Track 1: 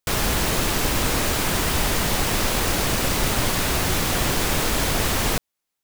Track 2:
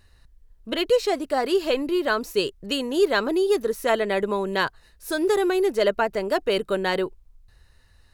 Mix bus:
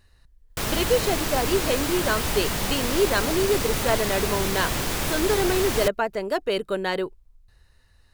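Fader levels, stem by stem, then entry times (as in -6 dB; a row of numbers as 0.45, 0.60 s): -4.5, -2.0 dB; 0.50, 0.00 s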